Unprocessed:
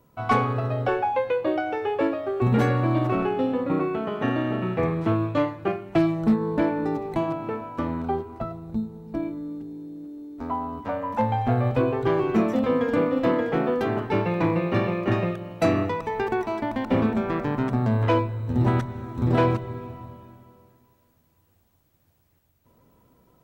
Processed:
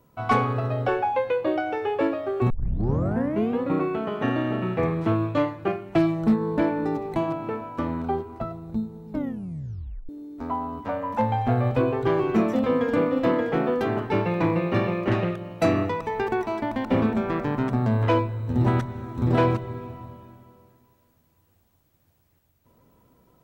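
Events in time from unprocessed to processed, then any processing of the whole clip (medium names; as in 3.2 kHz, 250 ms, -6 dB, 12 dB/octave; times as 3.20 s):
2.50 s: tape start 1.11 s
9.09 s: tape stop 1.00 s
15.07–15.58 s: loudspeaker Doppler distortion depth 0.24 ms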